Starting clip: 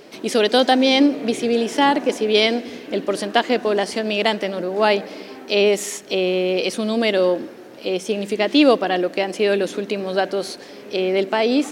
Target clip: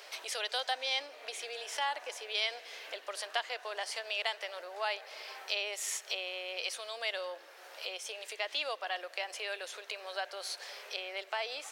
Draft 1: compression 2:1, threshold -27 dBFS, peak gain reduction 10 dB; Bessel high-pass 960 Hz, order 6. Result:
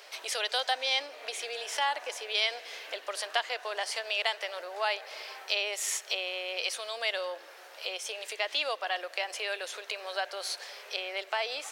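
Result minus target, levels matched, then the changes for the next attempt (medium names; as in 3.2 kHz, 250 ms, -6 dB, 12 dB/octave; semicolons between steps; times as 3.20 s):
compression: peak gain reduction -4.5 dB
change: compression 2:1, threshold -36 dBFS, peak gain reduction 14.5 dB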